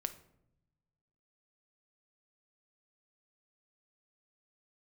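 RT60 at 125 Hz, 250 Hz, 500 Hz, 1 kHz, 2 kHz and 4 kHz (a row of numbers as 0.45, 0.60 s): 1.8, 1.4, 0.90, 0.70, 0.55, 0.45 s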